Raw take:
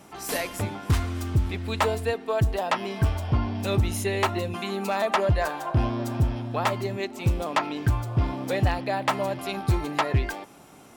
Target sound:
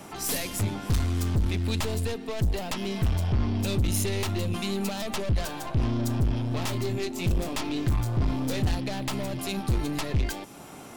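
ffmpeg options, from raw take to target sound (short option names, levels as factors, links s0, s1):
-filter_complex "[0:a]asettb=1/sr,asplit=3[s0][s1][s2];[s0]atrim=end=6.494[s3];[s1]atrim=start=6.49:end=8.75,asetpts=PTS-STARTPTS,afade=t=in:d=0.004:c=qsin,afade=t=out:st=2.256:d=0.004:c=qsin,asplit=2[s4][s5];[s5]adelay=23,volume=0.562[s6];[s4][s6]amix=inputs=2:normalize=0,atrim=end_sample=99666[s7];[s2]atrim=start=8.746[s8];[s3][s7]acrossfade=d=0.004:c1=hsin:c2=qsin[s9];[s9][s8]acrossfade=d=0.004:c1=qsin:c2=hsin,aeval=exprs='(tanh(25.1*val(0)+0.4)-tanh(0.4))/25.1':c=same,acrossover=split=320|3000[s10][s11][s12];[s11]acompressor=threshold=0.00398:ratio=3[s13];[s10][s13][s12]amix=inputs=3:normalize=0,volume=2.37"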